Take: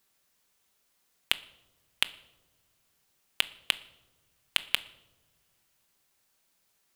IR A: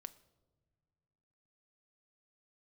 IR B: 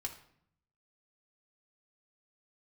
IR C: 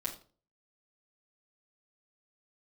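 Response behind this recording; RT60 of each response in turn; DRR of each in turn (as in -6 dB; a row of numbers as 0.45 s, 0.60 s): A; no single decay rate, 0.65 s, 0.40 s; 12.0 dB, 1.0 dB, -5.0 dB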